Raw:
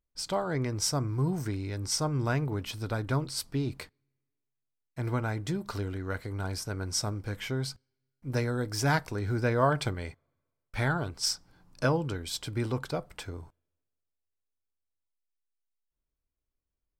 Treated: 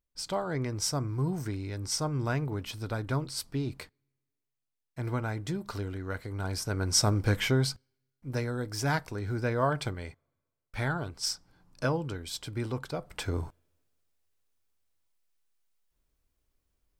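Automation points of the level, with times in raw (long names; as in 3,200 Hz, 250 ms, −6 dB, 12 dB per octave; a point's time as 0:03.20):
0:06.29 −1.5 dB
0:07.29 +9.5 dB
0:08.32 −2.5 dB
0:12.97 −2.5 dB
0:13.38 +10 dB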